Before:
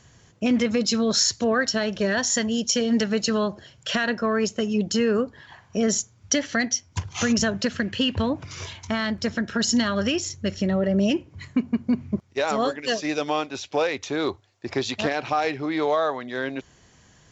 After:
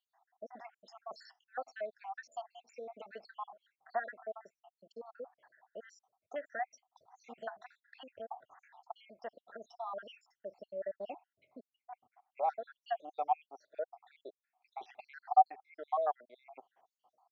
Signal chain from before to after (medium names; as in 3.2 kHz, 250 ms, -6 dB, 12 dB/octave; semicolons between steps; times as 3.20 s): random holes in the spectrogram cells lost 74%; ladder band-pass 800 Hz, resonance 80%